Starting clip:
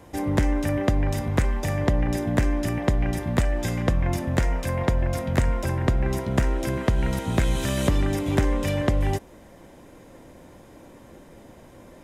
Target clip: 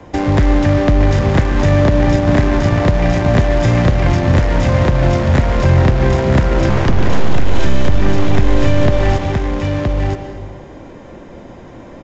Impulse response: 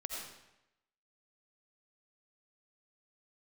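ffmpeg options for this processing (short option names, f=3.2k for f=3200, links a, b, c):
-filter_complex "[0:a]asettb=1/sr,asplit=3[a][b][c];[a]atrim=end=2.194[d];[b]atrim=start=2.19:end=2.8,asetpts=PTS-STARTPTS,afade=t=in:d=0.004:c=qsin,afade=t=out:st=0.606:d=0.004:c=qsin,aeval=exprs='0.282*(cos(1*acos(clip(val(0)/0.282,-1,1)))-cos(1*PI/2))+0.0282*(cos(7*acos(clip(val(0)/0.282,-1,1)))-cos(7*PI/2))':c=same[e];[c]atrim=start=2.796[f];[d][e]acrossfade=d=0.004:c1=hsin:c2=qsin[g];[g][f]acrossfade=d=0.004:c1=qsin:c2=hsin,acrossover=split=140|410[h][i][j];[h]acompressor=threshold=-24dB:ratio=4[k];[i]acompressor=threshold=-35dB:ratio=4[l];[j]acompressor=threshold=-34dB:ratio=4[m];[k][l][m]amix=inputs=3:normalize=0,asplit=2[n][o];[o]acrusher=bits=4:mix=0:aa=0.000001,volume=-5dB[p];[n][p]amix=inputs=2:normalize=0,aemphasis=mode=reproduction:type=50kf,asettb=1/sr,asplit=3[q][r][s];[q]atrim=end=6.694[t];[r]atrim=start=6.69:end=7.6,asetpts=PTS-STARTPTS,afade=t=in:d=0.004:c=qsin,afade=t=out:st=0.906:d=0.004:c=qsin,aeval=exprs='abs(val(0))':c=same[u];[s]atrim=start=7.596[v];[t][u]acrossfade=d=0.004:c1=hsin:c2=qsin[w];[w][v]acrossfade=d=0.004:c1=qsin:c2=hsin,aecho=1:1:970:0.562,asplit=2[x][y];[1:a]atrim=start_sample=2205,asetrate=26901,aresample=44100[z];[y][z]afir=irnorm=-1:irlink=0,volume=-7dB[aa];[x][aa]amix=inputs=2:normalize=0,aresample=16000,aresample=44100,alimiter=level_in=8.5dB:limit=-1dB:release=50:level=0:latency=1,volume=-1dB"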